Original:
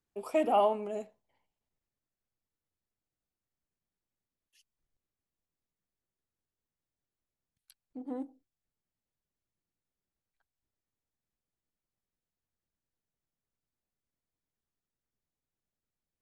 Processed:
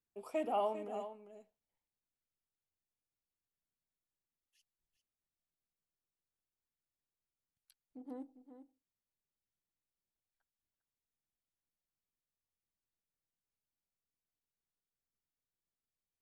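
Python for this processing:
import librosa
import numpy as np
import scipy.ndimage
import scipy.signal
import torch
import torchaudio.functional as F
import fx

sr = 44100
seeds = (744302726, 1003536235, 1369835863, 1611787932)

y = x + 10.0 ** (-11.0 / 20.0) * np.pad(x, (int(400 * sr / 1000.0), 0))[:len(x)]
y = F.gain(torch.from_numpy(y), -8.5).numpy()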